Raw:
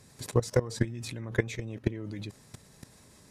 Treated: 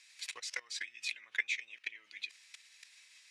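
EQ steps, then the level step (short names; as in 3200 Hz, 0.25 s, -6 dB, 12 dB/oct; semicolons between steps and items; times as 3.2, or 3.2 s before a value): ladder band-pass 2700 Hz, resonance 55%; high shelf 2900 Hz +10 dB; +8.5 dB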